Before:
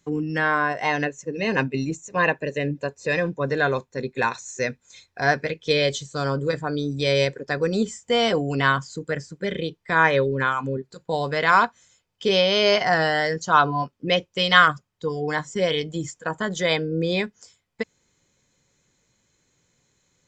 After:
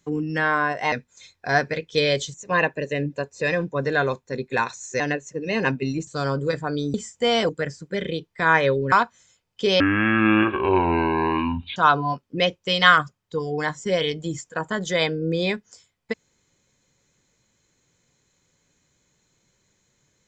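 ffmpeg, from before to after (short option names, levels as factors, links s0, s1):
-filter_complex "[0:a]asplit=10[s0][s1][s2][s3][s4][s5][s6][s7][s8][s9];[s0]atrim=end=0.922[s10];[s1]atrim=start=4.648:end=6.072[s11];[s2]atrim=start=1.988:end=4.652[s12];[s3]atrim=start=0.918:end=1.992[s13];[s4]atrim=start=6.068:end=6.942[s14];[s5]atrim=start=7.818:end=8.372[s15];[s6]atrim=start=8.988:end=10.422[s16];[s7]atrim=start=11.538:end=12.424[s17];[s8]atrim=start=12.42:end=13.46,asetpts=PTS-STARTPTS,asetrate=23373,aresample=44100[s18];[s9]atrim=start=13.456[s19];[s10][s11]acrossfade=d=0.004:c1=hsin:c2=hsin[s20];[s20][s12]acrossfade=d=0.004:c1=hsin:c2=hsin[s21];[s21][s13]acrossfade=d=0.004:c1=hsin:c2=hsin[s22];[s22][s14]acrossfade=d=0.004:c1=hsin:c2=hsin[s23];[s23][s15]acrossfade=d=0.004:c1=hsin:c2=hsin[s24];[s24][s16]acrossfade=d=0.004:c1=hsin:c2=hsin[s25];[s25][s17]acrossfade=d=0.004:c1=hsin:c2=hsin[s26];[s26][s18]acrossfade=d=0.004:c1=hsin:c2=hsin[s27];[s27][s19]acrossfade=d=0.004:c1=hsin:c2=hsin"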